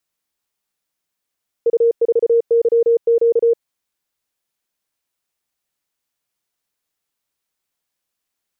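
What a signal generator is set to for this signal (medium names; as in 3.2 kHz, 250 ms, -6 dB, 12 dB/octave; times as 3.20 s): Morse "U4YQ" 34 wpm 465 Hz -10 dBFS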